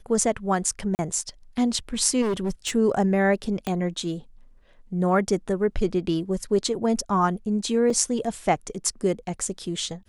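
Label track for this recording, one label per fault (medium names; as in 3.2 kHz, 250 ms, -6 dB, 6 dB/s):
0.950000	0.990000	dropout 39 ms
2.210000	2.760000	clipped -21.5 dBFS
3.670000	3.670000	pop -14 dBFS
7.900000	7.900000	dropout 3.3 ms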